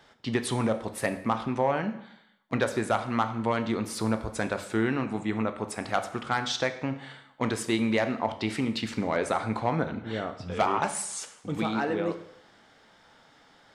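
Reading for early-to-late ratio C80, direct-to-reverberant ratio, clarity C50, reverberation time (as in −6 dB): 14.5 dB, 8.5 dB, 12.0 dB, 0.70 s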